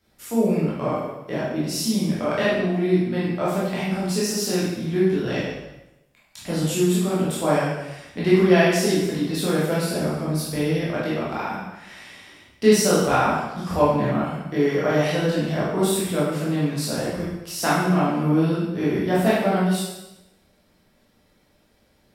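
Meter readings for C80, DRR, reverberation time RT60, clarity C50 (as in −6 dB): 3.0 dB, −9.0 dB, 0.95 s, −1.0 dB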